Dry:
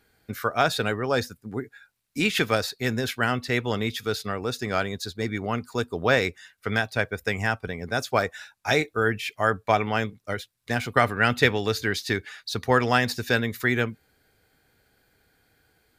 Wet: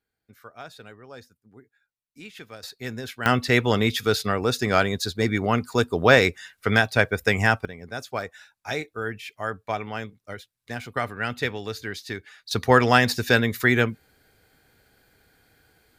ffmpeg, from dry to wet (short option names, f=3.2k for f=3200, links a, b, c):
-af "asetnsamples=n=441:p=0,asendcmd='2.63 volume volume -7dB;3.26 volume volume 5.5dB;7.65 volume volume -7dB;12.51 volume volume 4dB',volume=-19dB"